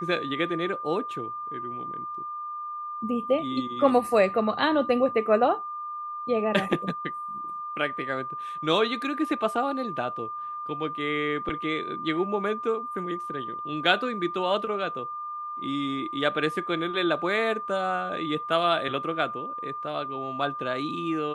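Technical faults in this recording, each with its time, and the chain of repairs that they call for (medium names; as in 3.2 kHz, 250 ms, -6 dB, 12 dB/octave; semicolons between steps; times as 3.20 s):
whine 1.2 kHz -32 dBFS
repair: band-stop 1.2 kHz, Q 30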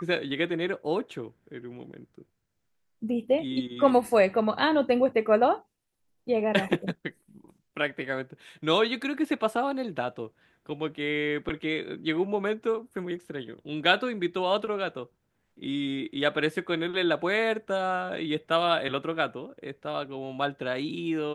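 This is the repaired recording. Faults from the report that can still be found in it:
nothing left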